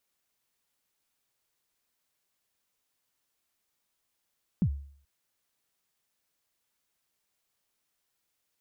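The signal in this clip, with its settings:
synth kick length 0.43 s, from 220 Hz, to 70 Hz, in 72 ms, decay 0.54 s, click off, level −19 dB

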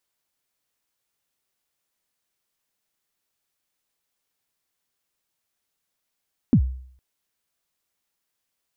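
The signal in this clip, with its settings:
synth kick length 0.46 s, from 290 Hz, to 64 Hz, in 78 ms, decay 0.59 s, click off, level −9.5 dB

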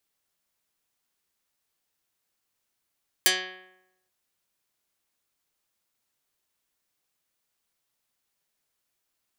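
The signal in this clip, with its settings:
Karplus-Strong string F#3, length 0.84 s, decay 0.89 s, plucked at 0.14, dark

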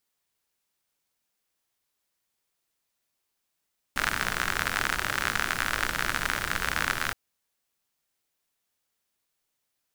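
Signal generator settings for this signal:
rain-like ticks over hiss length 3.17 s, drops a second 63, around 1,500 Hz, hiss −6 dB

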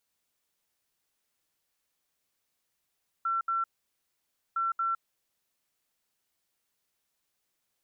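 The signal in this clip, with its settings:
beeps in groups sine 1,350 Hz, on 0.16 s, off 0.07 s, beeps 2, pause 0.92 s, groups 2, −26 dBFS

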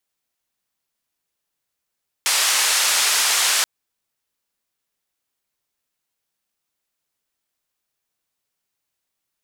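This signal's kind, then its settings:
band-limited noise 880–8,900 Hz, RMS −18.5 dBFS 1.38 s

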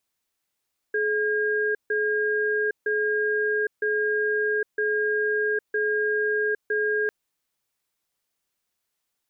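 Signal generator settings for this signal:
tone pair in a cadence 425 Hz, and 1,620 Hz, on 0.81 s, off 0.15 s, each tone −24 dBFS 6.15 s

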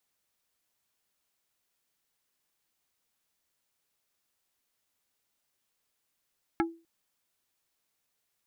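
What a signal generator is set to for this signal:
struck wood plate, length 0.25 s, lowest mode 332 Hz, decay 0.32 s, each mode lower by 2 dB, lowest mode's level −22 dB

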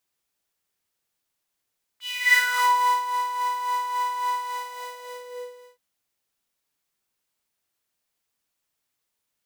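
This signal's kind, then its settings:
subtractive patch with tremolo B5, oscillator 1 saw, interval +12 semitones, sub −7 dB, noise −11.5 dB, filter highpass, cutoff 400 Hz, Q 7.3, filter envelope 3 octaves, filter decay 0.76 s, filter sustain 40%, attack 355 ms, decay 0.70 s, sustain −12.5 dB, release 1.41 s, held 2.37 s, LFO 3.6 Hz, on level 6 dB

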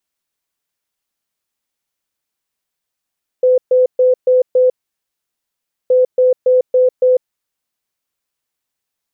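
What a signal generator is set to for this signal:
beeps in groups sine 507 Hz, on 0.15 s, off 0.13 s, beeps 5, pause 1.20 s, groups 2, −7.5 dBFS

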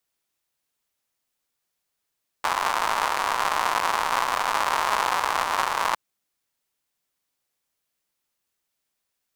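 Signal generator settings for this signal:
rain-like ticks over hiss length 3.51 s, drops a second 180, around 1,000 Hz, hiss −23.5 dB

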